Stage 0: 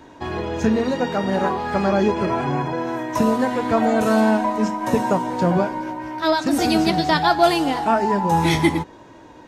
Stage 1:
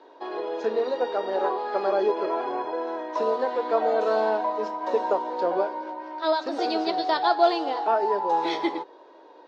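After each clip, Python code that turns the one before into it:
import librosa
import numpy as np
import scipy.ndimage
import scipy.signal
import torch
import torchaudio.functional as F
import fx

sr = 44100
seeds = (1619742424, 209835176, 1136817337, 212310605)

y = scipy.signal.sosfilt(scipy.signal.ellip(3, 1.0, 60, [410.0, 4300.0], 'bandpass', fs=sr, output='sos'), x)
y = fx.peak_eq(y, sr, hz=2200.0, db=-11.0, octaves=1.8)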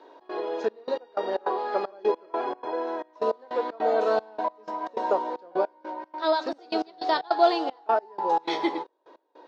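y = fx.step_gate(x, sr, bpm=154, pattern='xx.xxxx..x..', floor_db=-24.0, edge_ms=4.5)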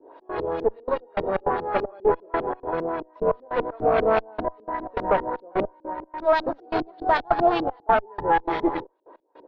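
y = fx.cheby_harmonics(x, sr, harmonics=(8,), levels_db=(-19,), full_scale_db=-8.5)
y = fx.filter_lfo_lowpass(y, sr, shape='saw_up', hz=5.0, low_hz=260.0, high_hz=3800.0, q=1.3)
y = y * 10.0 ** (2.0 / 20.0)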